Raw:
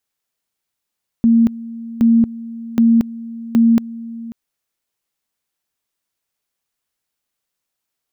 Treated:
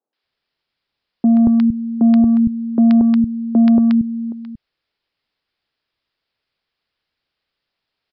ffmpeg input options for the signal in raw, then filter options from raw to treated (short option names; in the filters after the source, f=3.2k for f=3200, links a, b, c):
-f lavfi -i "aevalsrc='pow(10,(-8-18.5*gte(mod(t,0.77),0.23))/20)*sin(2*PI*230*t)':d=3.08:s=44100"
-filter_complex "[0:a]acontrast=76,aresample=11025,aresample=44100,acrossover=split=210|910[a][b][c];[c]adelay=130[d];[a]adelay=230[e];[e][b][d]amix=inputs=3:normalize=0"